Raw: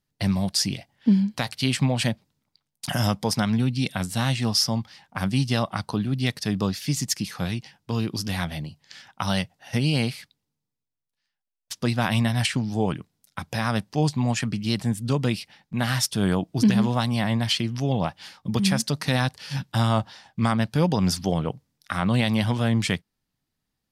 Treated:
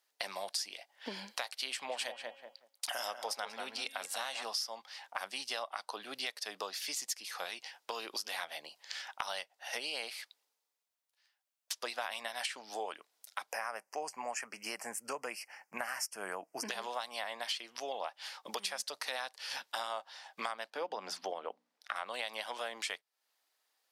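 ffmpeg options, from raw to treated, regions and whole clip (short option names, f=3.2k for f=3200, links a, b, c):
-filter_complex "[0:a]asettb=1/sr,asplit=3[a][b][c];[a]atrim=end=1.704[d];[b]atrim=start=1.7:end=4.43,asetpts=PTS-STARTPTS,afade=t=in:d=0.004:c=qsin,afade=t=out:st=2.726:d=0.004:c=qsin,bandreject=f=273.1:t=h:w=4,bandreject=f=546.2:t=h:w=4,bandreject=f=819.3:t=h:w=4,bandreject=f=1.0924k:t=h:w=4,bandreject=f=1.3655k:t=h:w=4,bandreject=f=1.6386k:t=h:w=4,bandreject=f=1.9117k:t=h:w=4,bandreject=f=2.1848k:t=h:w=4,bandreject=f=2.4579k:t=h:w=4,bandreject=f=2.731k:t=h:w=4,bandreject=f=3.0041k:t=h:w=4,bandreject=f=3.2772k:t=h:w=4,asplit=2[e][f];[f]adelay=187,lowpass=f=1.4k:p=1,volume=-7dB,asplit=2[g][h];[h]adelay=187,lowpass=f=1.4k:p=1,volume=0.19,asplit=2[i][j];[j]adelay=187,lowpass=f=1.4k:p=1,volume=0.19[k];[e][g][i][k]amix=inputs=4:normalize=0,atrim=end_sample=120393[l];[c]atrim=start=4.426[m];[d][l]acrossfade=d=0.004:c1=hsin:c2=qsin[n];[n][m]acrossfade=d=0.004:c1=qsin:c2=hsin,asettb=1/sr,asplit=3[o][p][q];[o]atrim=end=13.524[r];[p]atrim=start=13.52:end=16.69,asetpts=PTS-STARTPTS,afade=t=in:d=0.004:c=qsin,afade=t=out:st=3.166:d=0.004:c=qsin,asubboost=boost=4:cutoff=220,asuperstop=centerf=3700:order=4:qfactor=1.3[s];[q]atrim=start=16.686[t];[r][s]acrossfade=d=0.004:c1=hsin:c2=qsin[u];[u][t]acrossfade=d=0.004:c1=qsin:c2=hsin,asettb=1/sr,asplit=3[v][w][x];[v]atrim=end=20.704[y];[w]atrim=start=20.7:end=21.96,asetpts=PTS-STARTPTS,afade=t=in:d=0.004:c=qsin,afade=t=out:st=1.256:d=0.004:c=qsin,lowpass=f=2k:p=1,lowshelf=f=150:t=q:w=3:g=-9,bandreject=f=60:t=h:w=6,bandreject=f=120:t=h:w=6,bandreject=f=180:t=h:w=6,bandreject=f=240:t=h:w=6,bandreject=f=300:t=h:w=6[z];[x]atrim=start=21.956[aa];[y][z]acrossfade=d=0.004:c1=hsin:c2=qsin[ab];[ab][aa]acrossfade=d=0.004:c1=qsin:c2=hsin,highpass=f=530:w=0.5412,highpass=f=530:w=1.3066,acompressor=threshold=-44dB:ratio=4,volume=5.5dB"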